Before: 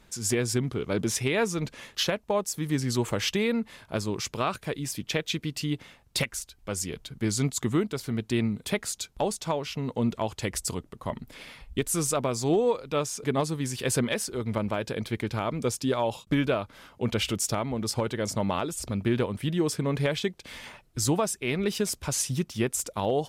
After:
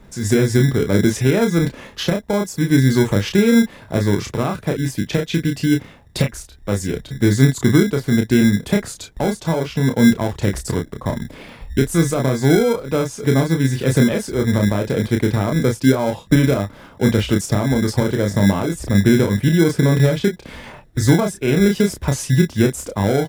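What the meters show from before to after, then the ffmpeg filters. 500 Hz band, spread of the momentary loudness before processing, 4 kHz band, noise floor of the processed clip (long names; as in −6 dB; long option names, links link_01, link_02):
+9.0 dB, 7 LU, +4.5 dB, −44 dBFS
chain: -filter_complex "[0:a]tiltshelf=frequency=1400:gain=7.5,asplit=2[link_01][link_02];[link_02]adelay=30,volume=-5dB[link_03];[link_01][link_03]amix=inputs=2:normalize=0,acrossover=split=320[link_04][link_05];[link_04]acrusher=samples=24:mix=1:aa=0.000001[link_06];[link_05]alimiter=limit=-19dB:level=0:latency=1:release=126[link_07];[link_06][link_07]amix=inputs=2:normalize=0,volume=6dB"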